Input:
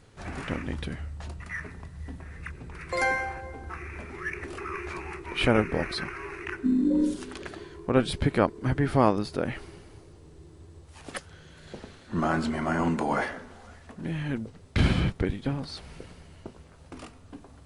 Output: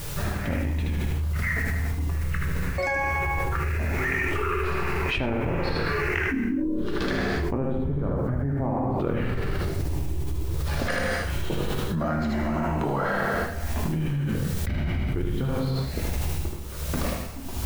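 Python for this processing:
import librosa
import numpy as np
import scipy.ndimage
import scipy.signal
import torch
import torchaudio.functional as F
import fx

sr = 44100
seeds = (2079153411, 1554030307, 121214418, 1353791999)

y = fx.spec_ripple(x, sr, per_octave=0.65, drift_hz=0.85, depth_db=6)
y = fx.doppler_pass(y, sr, speed_mps=17, closest_m=16.0, pass_at_s=7.93)
y = fx.lowpass(y, sr, hz=3700.0, slope=6)
y = fx.low_shelf(y, sr, hz=85.0, db=11.0)
y = fx.env_lowpass_down(y, sr, base_hz=1000.0, full_db=-22.0)
y = fx.quant_dither(y, sr, seeds[0], bits=12, dither='triangular')
y = y * (1.0 - 0.85 / 2.0 + 0.85 / 2.0 * np.cos(2.0 * np.pi * 1.3 * (np.arange(len(y)) / sr)))
y = y + 10.0 ** (-4.0 / 20.0) * np.pad(y, (int(77 * sr / 1000.0), 0))[:len(y)]
y = fx.rev_gated(y, sr, seeds[1], gate_ms=350, shape='falling', drr_db=1.0)
y = fx.env_flatten(y, sr, amount_pct=100)
y = y * 10.0 ** (-8.0 / 20.0)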